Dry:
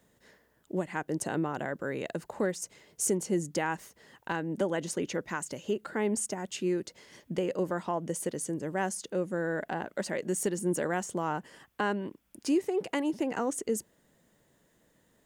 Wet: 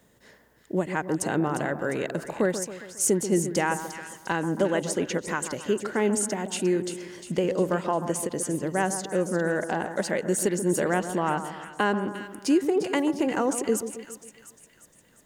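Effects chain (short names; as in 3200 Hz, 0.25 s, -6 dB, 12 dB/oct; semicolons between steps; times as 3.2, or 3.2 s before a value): 10.99–11.85 resonant high shelf 5100 Hz -11 dB, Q 1.5; split-band echo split 1500 Hz, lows 0.136 s, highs 0.352 s, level -10 dB; ending taper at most 400 dB/s; gain +5.5 dB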